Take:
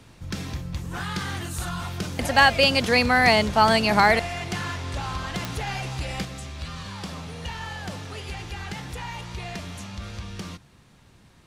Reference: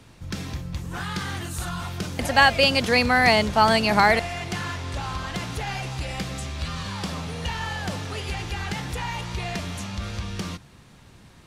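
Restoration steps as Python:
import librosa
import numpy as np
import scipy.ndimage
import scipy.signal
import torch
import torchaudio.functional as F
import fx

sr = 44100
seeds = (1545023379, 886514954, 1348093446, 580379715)

y = fx.fix_declip(x, sr, threshold_db=-5.0)
y = fx.fix_declick_ar(y, sr, threshold=10.0)
y = fx.gain(y, sr, db=fx.steps((0.0, 0.0), (6.25, 4.5)))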